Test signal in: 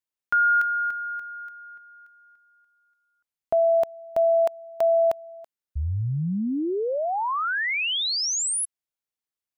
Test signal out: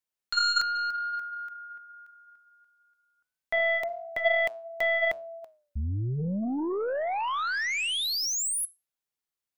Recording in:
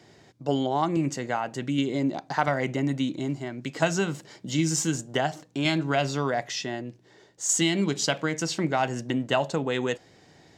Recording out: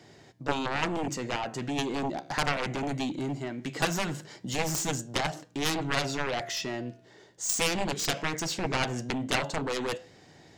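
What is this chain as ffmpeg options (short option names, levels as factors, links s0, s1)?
-af "flanger=delay=6.8:depth=9.3:regen=-88:speed=0.2:shape=triangular,aeval=exprs='0.211*(cos(1*acos(clip(val(0)/0.211,-1,1)))-cos(1*PI/2))+0.00422*(cos(6*acos(clip(val(0)/0.211,-1,1)))-cos(6*PI/2))+0.0841*(cos(7*acos(clip(val(0)/0.211,-1,1)))-cos(7*PI/2))':c=same"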